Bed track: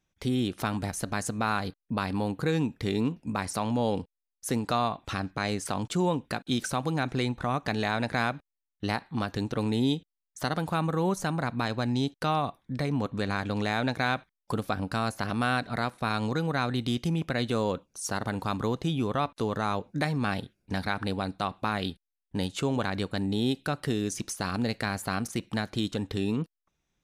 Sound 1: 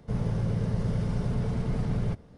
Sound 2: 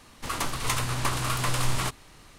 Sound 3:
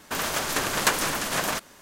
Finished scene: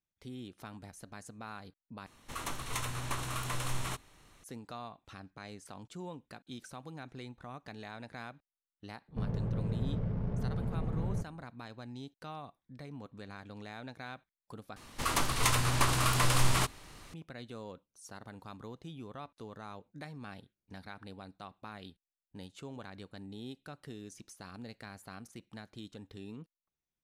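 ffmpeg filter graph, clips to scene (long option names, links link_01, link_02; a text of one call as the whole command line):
ffmpeg -i bed.wav -i cue0.wav -i cue1.wav -filter_complex "[2:a]asplit=2[link_01][link_02];[0:a]volume=-17.5dB[link_03];[link_01]bandreject=frequency=4800:width=7.9[link_04];[1:a]adynamicsmooth=sensitivity=4:basefreq=590[link_05];[link_03]asplit=3[link_06][link_07][link_08];[link_06]atrim=end=2.064[link_09];[link_04]atrim=end=2.38,asetpts=PTS-STARTPTS,volume=-9dB[link_10];[link_07]atrim=start=4.436:end=14.764[link_11];[link_02]atrim=end=2.38,asetpts=PTS-STARTPTS,volume=-0.5dB[link_12];[link_08]atrim=start=17.136[link_13];[link_05]atrim=end=2.37,asetpts=PTS-STARTPTS,volume=-6dB,afade=type=in:duration=0.004:curve=hsin,afade=type=out:start_time=2.366:duration=0.004:curve=hsin,adelay=9080[link_14];[link_09][link_10]acrossfade=duration=0.004:curve1=hsin:curve2=hsin[link_15];[link_15][link_11]acrossfade=duration=0.004:curve1=hsin:curve2=hsin[link_16];[link_16][link_12]acrossfade=duration=0.004:curve1=hsin:curve2=hsin[link_17];[link_17][link_13]acrossfade=duration=0.004:curve1=hsin:curve2=hsin[link_18];[link_18][link_14]amix=inputs=2:normalize=0" out.wav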